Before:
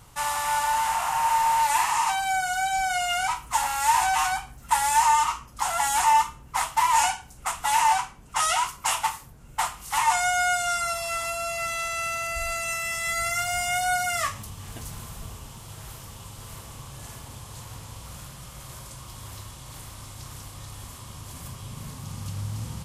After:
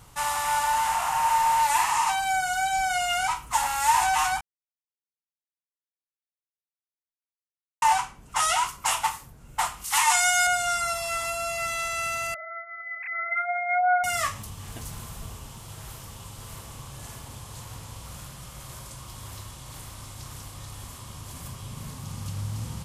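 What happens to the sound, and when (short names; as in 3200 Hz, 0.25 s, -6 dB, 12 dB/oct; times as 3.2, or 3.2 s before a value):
4.41–7.82 mute
9.84–10.47 tilt shelf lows -7 dB, about 1100 Hz
12.34–14.04 sine-wave speech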